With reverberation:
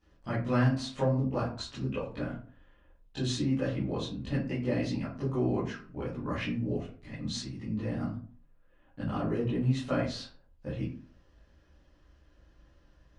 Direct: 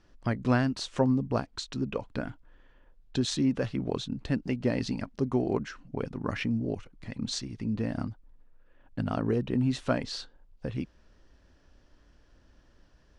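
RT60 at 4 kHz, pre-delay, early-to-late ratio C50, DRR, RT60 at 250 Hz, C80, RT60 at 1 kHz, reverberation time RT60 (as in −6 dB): 0.25 s, 14 ms, 6.0 dB, −12.5 dB, 0.55 s, 11.5 dB, 0.40 s, 0.45 s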